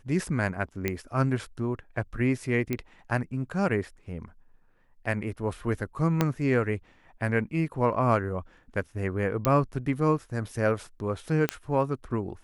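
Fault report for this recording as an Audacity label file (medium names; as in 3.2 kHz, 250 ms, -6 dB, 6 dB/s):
0.880000	0.880000	pop -13 dBFS
2.730000	2.730000	pop -15 dBFS
6.210000	6.210000	pop -9 dBFS
9.450000	9.450000	pop -9 dBFS
11.490000	11.490000	pop -10 dBFS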